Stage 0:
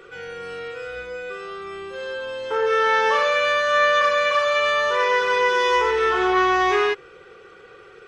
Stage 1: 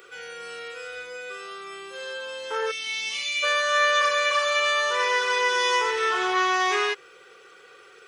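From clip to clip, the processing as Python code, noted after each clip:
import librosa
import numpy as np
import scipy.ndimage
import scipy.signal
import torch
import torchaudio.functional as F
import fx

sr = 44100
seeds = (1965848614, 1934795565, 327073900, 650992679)

y = fx.spec_box(x, sr, start_s=2.71, length_s=0.72, low_hz=330.0, high_hz=1900.0, gain_db=-25)
y = fx.riaa(y, sr, side='recording')
y = y * 10.0 ** (-4.0 / 20.0)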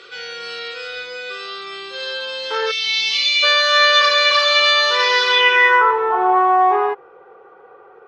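y = fx.filter_sweep_lowpass(x, sr, from_hz=4300.0, to_hz=850.0, start_s=5.26, end_s=6.05, q=4.1)
y = y * 10.0 ** (5.5 / 20.0)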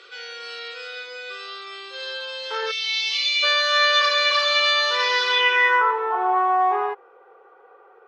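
y = scipy.signal.sosfilt(scipy.signal.butter(2, 400.0, 'highpass', fs=sr, output='sos'), x)
y = y * 10.0 ** (-5.0 / 20.0)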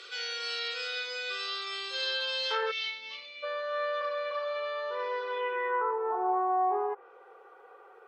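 y = fx.env_lowpass_down(x, sr, base_hz=660.0, full_db=-19.5)
y = fx.high_shelf(y, sr, hz=3500.0, db=11.0)
y = y * 10.0 ** (-3.5 / 20.0)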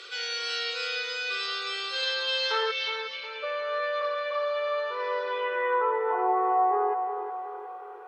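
y = fx.echo_split(x, sr, split_hz=2400.0, low_ms=363, high_ms=108, feedback_pct=52, wet_db=-8.0)
y = y * 10.0 ** (3.0 / 20.0)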